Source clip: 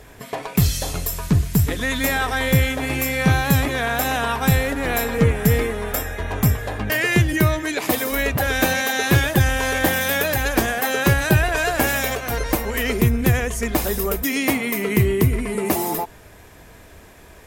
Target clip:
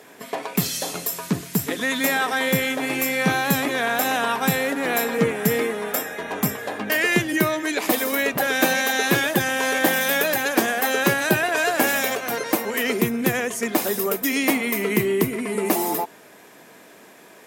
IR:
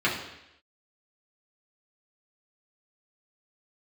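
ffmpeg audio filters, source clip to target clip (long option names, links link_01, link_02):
-af "highpass=frequency=190:width=0.5412,highpass=frequency=190:width=1.3066"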